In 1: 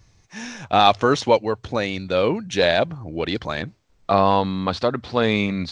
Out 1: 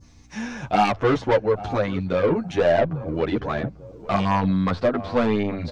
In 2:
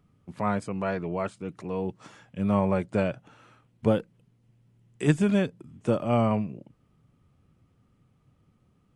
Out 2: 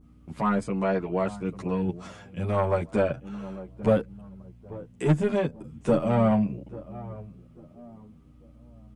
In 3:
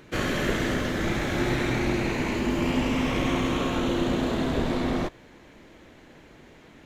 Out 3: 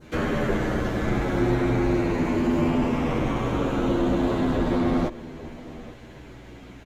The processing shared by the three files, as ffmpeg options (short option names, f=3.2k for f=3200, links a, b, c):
-filter_complex "[0:a]bandreject=f=1.8k:w=24,adynamicequalizer=threshold=0.0158:dfrequency=2500:dqfactor=0.82:tfrequency=2500:tqfactor=0.82:attack=5:release=100:ratio=0.375:range=2.5:mode=cutabove:tftype=bell,acrossover=split=2000[a][b];[b]acompressor=threshold=-47dB:ratio=12[c];[a][c]amix=inputs=2:normalize=0,aeval=exprs='val(0)+0.002*(sin(2*PI*60*n/s)+sin(2*PI*2*60*n/s)/2+sin(2*PI*3*60*n/s)/3+sin(2*PI*4*60*n/s)/4+sin(2*PI*5*60*n/s)/5)':c=same,apsyclip=7dB,asoftclip=type=tanh:threshold=-11dB,asplit=2[d][e];[e]adelay=842,lowpass=f=940:p=1,volume=-15.5dB,asplit=2[f][g];[g]adelay=842,lowpass=f=940:p=1,volume=0.36,asplit=2[h][i];[i]adelay=842,lowpass=f=940:p=1,volume=0.36[j];[d][f][h][j]amix=inputs=4:normalize=0,asplit=2[k][l];[l]adelay=9.8,afreqshift=-0.37[m];[k][m]amix=inputs=2:normalize=1"